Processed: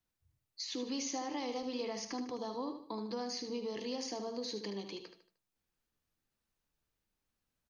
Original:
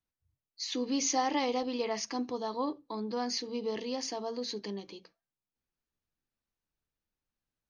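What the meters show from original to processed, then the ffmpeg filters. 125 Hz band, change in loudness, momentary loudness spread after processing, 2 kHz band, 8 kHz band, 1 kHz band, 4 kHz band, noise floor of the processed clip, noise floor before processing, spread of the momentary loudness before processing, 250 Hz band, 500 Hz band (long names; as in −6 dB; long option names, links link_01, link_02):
can't be measured, −6.0 dB, 6 LU, −7.0 dB, −7.5 dB, −8.5 dB, −4.5 dB, below −85 dBFS, below −85 dBFS, 10 LU, −5.0 dB, −5.0 dB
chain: -filter_complex "[0:a]acrossover=split=420|6100[link_01][link_02][link_03];[link_01]acompressor=threshold=-46dB:ratio=4[link_04];[link_02]acompressor=threshold=-47dB:ratio=4[link_05];[link_03]acompressor=threshold=-56dB:ratio=4[link_06];[link_04][link_05][link_06]amix=inputs=3:normalize=0,aecho=1:1:76|152|228|304:0.376|0.147|0.0572|0.0223,volume=3.5dB"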